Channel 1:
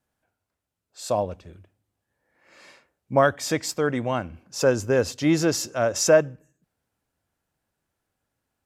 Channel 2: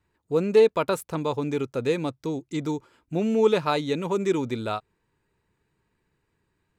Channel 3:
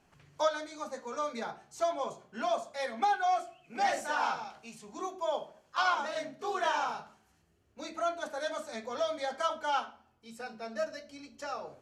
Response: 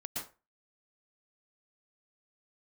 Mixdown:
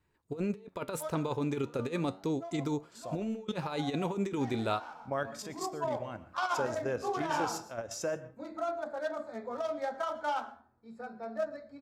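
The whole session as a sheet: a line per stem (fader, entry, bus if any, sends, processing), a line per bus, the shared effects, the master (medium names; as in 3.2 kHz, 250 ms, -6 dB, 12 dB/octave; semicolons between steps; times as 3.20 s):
-10.0 dB, 1.95 s, send -14.5 dB, level held to a coarse grid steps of 10 dB
-0.5 dB, 0.00 s, no send, none
+3.0 dB, 0.60 s, send -20 dB, local Wiener filter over 15 samples; harmonic-percussive split percussive -6 dB; auto duck -20 dB, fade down 1.45 s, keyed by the second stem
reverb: on, RT60 0.30 s, pre-delay 107 ms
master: compressor with a negative ratio -27 dBFS, ratio -0.5; flange 0.35 Hz, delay 6.4 ms, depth 8.8 ms, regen +84%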